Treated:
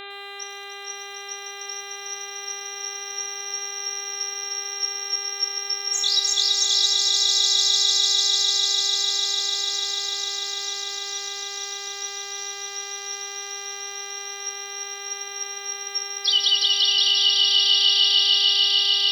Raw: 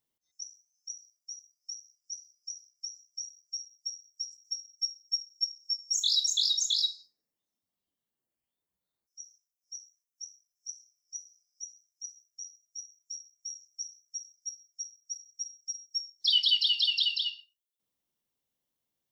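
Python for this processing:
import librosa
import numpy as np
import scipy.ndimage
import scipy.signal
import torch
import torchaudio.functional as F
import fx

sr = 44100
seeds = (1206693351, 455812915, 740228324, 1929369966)

y = fx.savgol(x, sr, points=65, at=(13.15, 14.18))
y = fx.echo_swell(y, sr, ms=149, loudest=8, wet_db=-5.0)
y = fx.dmg_buzz(y, sr, base_hz=400.0, harmonics=10, level_db=-42.0, tilt_db=-1, odd_only=False)
y = fx.echo_crushed(y, sr, ms=104, feedback_pct=55, bits=8, wet_db=-12.0)
y = y * librosa.db_to_amplitude(4.5)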